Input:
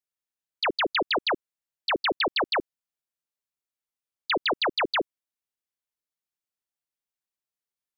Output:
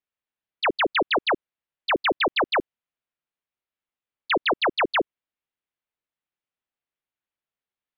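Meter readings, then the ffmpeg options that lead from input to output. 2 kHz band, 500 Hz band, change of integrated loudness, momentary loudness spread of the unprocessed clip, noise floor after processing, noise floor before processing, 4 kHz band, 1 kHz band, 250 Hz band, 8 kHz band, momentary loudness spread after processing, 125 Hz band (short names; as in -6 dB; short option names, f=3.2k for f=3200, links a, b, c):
+3.5 dB, +3.5 dB, +2.5 dB, 7 LU, under -85 dBFS, under -85 dBFS, 0.0 dB, +3.5 dB, +3.5 dB, n/a, 5 LU, +3.5 dB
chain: -af "lowpass=f=3.4k:w=0.5412,lowpass=f=3.4k:w=1.3066,volume=3.5dB"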